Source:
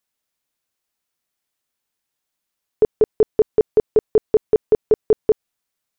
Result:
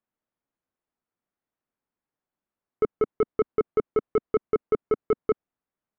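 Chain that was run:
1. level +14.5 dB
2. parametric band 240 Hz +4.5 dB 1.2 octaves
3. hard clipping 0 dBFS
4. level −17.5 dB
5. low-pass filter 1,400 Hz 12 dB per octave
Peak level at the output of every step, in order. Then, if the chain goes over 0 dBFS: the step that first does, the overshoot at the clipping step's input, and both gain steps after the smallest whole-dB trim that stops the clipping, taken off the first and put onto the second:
+7.0, +9.5, 0.0, −17.5, −17.0 dBFS
step 1, 9.5 dB
step 1 +4.5 dB, step 4 −7.5 dB

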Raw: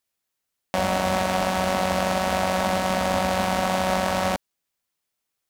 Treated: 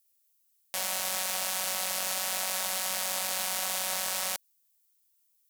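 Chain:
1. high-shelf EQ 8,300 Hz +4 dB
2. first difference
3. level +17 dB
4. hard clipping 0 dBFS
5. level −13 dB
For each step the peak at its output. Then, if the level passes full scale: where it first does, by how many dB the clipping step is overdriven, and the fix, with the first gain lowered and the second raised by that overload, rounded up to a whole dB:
−6.5, −11.5, +5.5, 0.0, −13.0 dBFS
step 3, 5.5 dB
step 3 +11 dB, step 5 −7 dB

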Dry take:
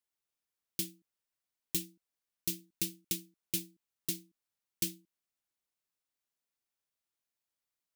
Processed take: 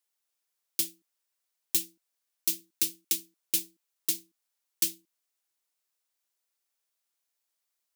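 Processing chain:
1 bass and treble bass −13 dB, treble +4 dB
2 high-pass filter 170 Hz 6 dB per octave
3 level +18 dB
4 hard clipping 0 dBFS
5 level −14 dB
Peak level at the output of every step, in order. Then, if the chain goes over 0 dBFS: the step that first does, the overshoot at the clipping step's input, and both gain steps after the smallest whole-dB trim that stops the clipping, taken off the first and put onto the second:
−13.0, −13.0, +5.0, 0.0, −14.0 dBFS
step 3, 5.0 dB
step 3 +13 dB, step 5 −9 dB

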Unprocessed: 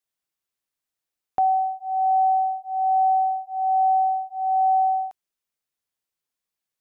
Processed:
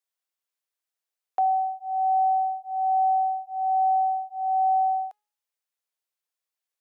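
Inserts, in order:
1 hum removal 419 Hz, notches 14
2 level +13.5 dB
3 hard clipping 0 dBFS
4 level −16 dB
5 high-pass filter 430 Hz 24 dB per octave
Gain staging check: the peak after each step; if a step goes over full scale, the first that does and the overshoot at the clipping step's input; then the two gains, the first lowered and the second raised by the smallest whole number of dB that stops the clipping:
−15.0, −1.5, −1.5, −17.5, −17.0 dBFS
no step passes full scale

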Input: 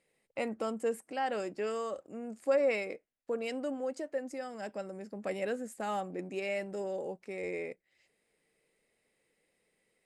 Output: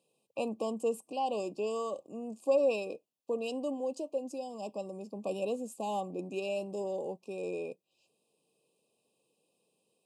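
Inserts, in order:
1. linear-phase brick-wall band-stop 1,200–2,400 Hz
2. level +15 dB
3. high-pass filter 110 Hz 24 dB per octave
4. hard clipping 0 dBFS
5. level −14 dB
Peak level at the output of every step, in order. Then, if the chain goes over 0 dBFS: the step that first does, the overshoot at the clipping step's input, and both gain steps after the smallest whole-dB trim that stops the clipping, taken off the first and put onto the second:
−19.0, −4.0, −3.5, −3.5, −17.5 dBFS
no step passes full scale

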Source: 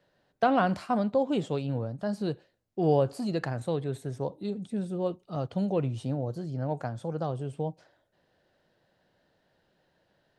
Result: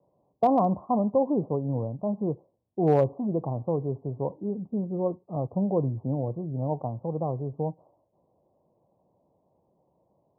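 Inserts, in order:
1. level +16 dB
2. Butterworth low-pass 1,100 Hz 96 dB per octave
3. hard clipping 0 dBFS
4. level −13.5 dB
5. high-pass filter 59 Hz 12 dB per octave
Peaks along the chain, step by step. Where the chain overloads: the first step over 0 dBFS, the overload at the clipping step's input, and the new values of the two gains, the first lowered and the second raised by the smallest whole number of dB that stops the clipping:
+4.0, +3.0, 0.0, −13.5, −12.0 dBFS
step 1, 3.0 dB
step 1 +13 dB, step 4 −10.5 dB

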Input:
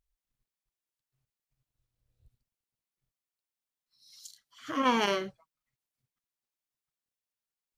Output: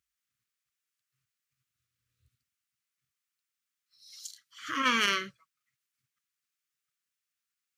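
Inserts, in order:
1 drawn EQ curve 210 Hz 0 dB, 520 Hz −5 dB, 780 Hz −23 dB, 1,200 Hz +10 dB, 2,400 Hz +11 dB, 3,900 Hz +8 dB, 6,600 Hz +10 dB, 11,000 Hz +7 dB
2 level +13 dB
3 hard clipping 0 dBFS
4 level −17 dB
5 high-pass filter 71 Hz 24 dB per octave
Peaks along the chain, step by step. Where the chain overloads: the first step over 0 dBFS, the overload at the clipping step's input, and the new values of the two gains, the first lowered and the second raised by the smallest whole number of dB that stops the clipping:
−7.0, +6.0, 0.0, −17.0, −16.0 dBFS
step 2, 6.0 dB
step 2 +7 dB, step 4 −11 dB

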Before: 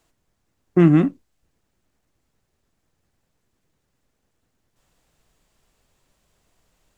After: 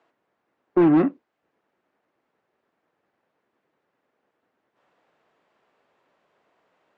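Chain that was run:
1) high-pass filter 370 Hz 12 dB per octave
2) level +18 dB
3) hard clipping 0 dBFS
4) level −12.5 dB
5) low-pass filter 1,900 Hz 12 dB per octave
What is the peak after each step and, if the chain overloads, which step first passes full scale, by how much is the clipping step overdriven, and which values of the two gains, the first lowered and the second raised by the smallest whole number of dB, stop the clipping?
−8.0, +10.0, 0.0, −12.5, −12.0 dBFS
step 2, 10.0 dB
step 2 +8 dB, step 4 −2.5 dB

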